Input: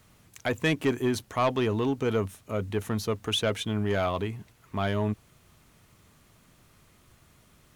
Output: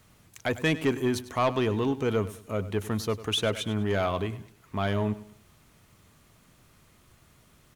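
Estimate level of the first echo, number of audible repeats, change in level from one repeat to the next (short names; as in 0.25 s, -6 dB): -16.0 dB, 3, -8.5 dB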